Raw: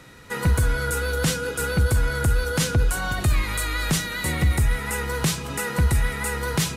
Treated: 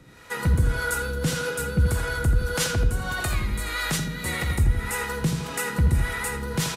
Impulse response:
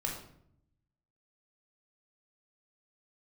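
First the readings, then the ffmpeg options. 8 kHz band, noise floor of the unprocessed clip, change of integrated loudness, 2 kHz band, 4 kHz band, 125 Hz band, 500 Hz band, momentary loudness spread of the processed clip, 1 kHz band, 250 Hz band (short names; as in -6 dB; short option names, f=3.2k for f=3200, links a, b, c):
-3.0 dB, -33 dBFS, -2.0 dB, -1.5 dB, -2.5 dB, -1.5 dB, -2.5 dB, 5 LU, -2.0 dB, -1.5 dB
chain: -filter_complex "[0:a]asplit=2[a][b];[b]adelay=82,lowpass=f=4.8k:p=1,volume=-6dB,asplit=2[c][d];[d]adelay=82,lowpass=f=4.8k:p=1,volume=0.55,asplit=2[e][f];[f]adelay=82,lowpass=f=4.8k:p=1,volume=0.55,asplit=2[g][h];[h]adelay=82,lowpass=f=4.8k:p=1,volume=0.55,asplit=2[i][j];[j]adelay=82,lowpass=f=4.8k:p=1,volume=0.55,asplit=2[k][l];[l]adelay=82,lowpass=f=4.8k:p=1,volume=0.55,asplit=2[m][n];[n]adelay=82,lowpass=f=4.8k:p=1,volume=0.55[o];[a][c][e][g][i][k][m][o]amix=inputs=8:normalize=0,acrossover=split=410[p][q];[p]aeval=exprs='val(0)*(1-0.7/2+0.7/2*cos(2*PI*1.7*n/s))':c=same[r];[q]aeval=exprs='val(0)*(1-0.7/2-0.7/2*cos(2*PI*1.7*n/s))':c=same[s];[r][s]amix=inputs=2:normalize=0"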